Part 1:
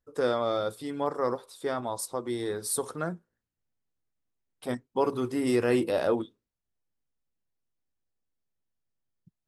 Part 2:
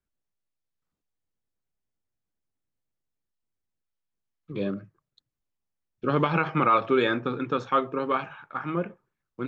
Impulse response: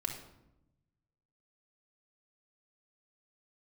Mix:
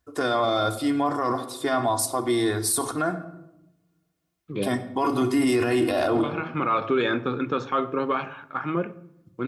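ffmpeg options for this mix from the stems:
-filter_complex "[0:a]equalizer=f=410:t=o:w=0.33:g=-11.5,aecho=1:1:2.8:0.47,volume=-0.5dB,asplit=3[a][b][c];[b]volume=-4dB[d];[1:a]volume=-5.5dB,asplit=2[e][f];[f]volume=-13dB[g];[c]apad=whole_len=418043[h];[e][h]sidechaincompress=threshold=-46dB:ratio=8:attack=16:release=481[i];[2:a]atrim=start_sample=2205[j];[d][g]amix=inputs=2:normalize=0[k];[k][j]afir=irnorm=-1:irlink=0[l];[a][i][l]amix=inputs=3:normalize=0,acontrast=71,highpass=55,alimiter=limit=-14.5dB:level=0:latency=1:release=14"

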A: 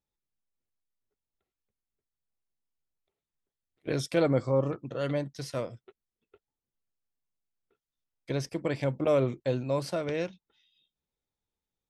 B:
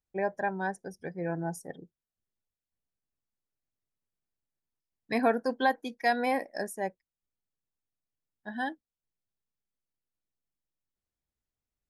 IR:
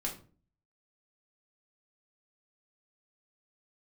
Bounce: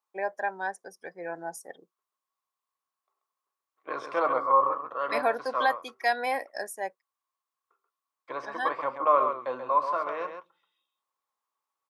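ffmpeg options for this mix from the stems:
-filter_complex "[0:a]crystalizer=i=8.5:c=0,lowpass=f=1.1k:t=q:w=13,volume=-6.5dB,asplit=3[a][b][c];[b]volume=-7.5dB[d];[c]volume=-5dB[e];[1:a]volume=2dB[f];[2:a]atrim=start_sample=2205[g];[d][g]afir=irnorm=-1:irlink=0[h];[e]aecho=0:1:134:1[i];[a][f][h][i]amix=inputs=4:normalize=0,highpass=560"

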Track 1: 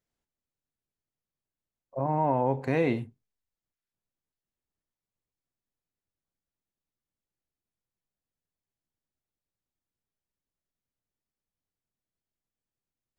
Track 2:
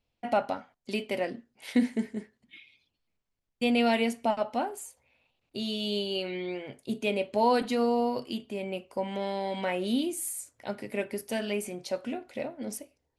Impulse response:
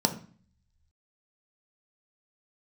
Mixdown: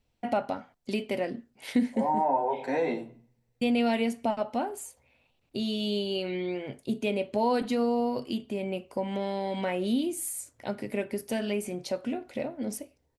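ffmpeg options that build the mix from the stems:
-filter_complex "[0:a]highpass=490,asplit=2[a][b];[b]adelay=10.1,afreqshift=2.8[c];[a][c]amix=inputs=2:normalize=1,volume=-1.5dB,asplit=2[d][e];[e]volume=-4dB[f];[1:a]lowshelf=f=460:g=5.5,volume=1.5dB[g];[2:a]atrim=start_sample=2205[h];[f][h]afir=irnorm=-1:irlink=0[i];[d][g][i]amix=inputs=3:normalize=0,acompressor=threshold=-32dB:ratio=1.5"

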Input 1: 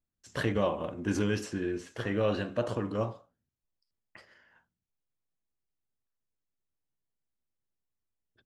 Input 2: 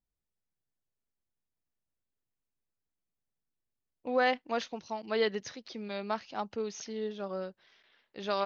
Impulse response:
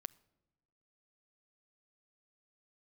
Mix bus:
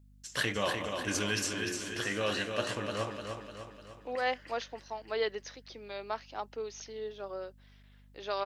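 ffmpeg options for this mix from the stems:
-filter_complex "[0:a]tiltshelf=f=1.3k:g=-9,volume=1dB,asplit=3[a][b][c];[b]volume=-5.5dB[d];[1:a]highpass=f=300:w=0.5412,highpass=f=300:w=1.3066,aeval=exprs='val(0)+0.00178*(sin(2*PI*50*n/s)+sin(2*PI*2*50*n/s)/2+sin(2*PI*3*50*n/s)/3+sin(2*PI*4*50*n/s)/4+sin(2*PI*5*50*n/s)/5)':c=same,volume=-2.5dB[e];[c]apad=whole_len=372914[f];[e][f]sidechaincompress=threshold=-47dB:ratio=8:attack=6.2:release=148[g];[d]aecho=0:1:300|600|900|1200|1500|1800|2100|2400:1|0.52|0.27|0.141|0.0731|0.038|0.0198|0.0103[h];[a][g][h]amix=inputs=3:normalize=0"

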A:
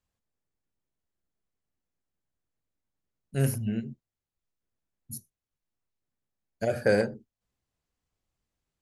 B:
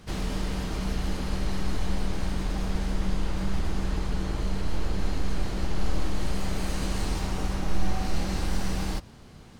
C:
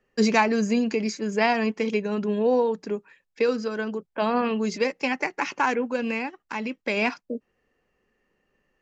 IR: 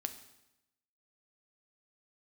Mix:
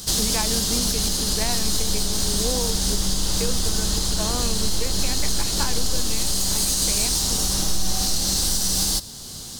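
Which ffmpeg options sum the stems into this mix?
-filter_complex "[1:a]aexciter=amount=6.1:drive=8.7:freq=3.5k,volume=3dB,asplit=2[a][b];[b]volume=-6dB[c];[2:a]volume=-4.5dB[d];[3:a]atrim=start_sample=2205[e];[c][e]afir=irnorm=-1:irlink=0[f];[a][d][f]amix=inputs=3:normalize=0,alimiter=limit=-11dB:level=0:latency=1:release=345"

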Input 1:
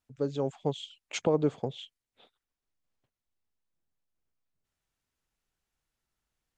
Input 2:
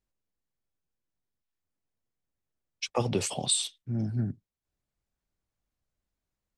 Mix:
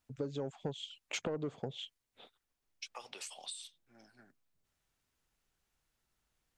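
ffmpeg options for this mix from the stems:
-filter_complex "[0:a]asoftclip=type=tanh:threshold=-20.5dB,volume=3dB[a];[1:a]highpass=1.1k,acompressor=threshold=-36dB:ratio=12,volume=-6dB[b];[a][b]amix=inputs=2:normalize=0,acompressor=threshold=-36dB:ratio=5"

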